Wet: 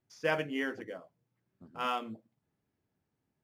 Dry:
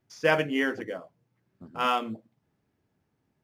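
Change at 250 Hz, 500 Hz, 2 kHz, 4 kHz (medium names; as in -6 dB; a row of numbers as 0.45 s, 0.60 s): -7.5 dB, -7.5 dB, -7.5 dB, -7.5 dB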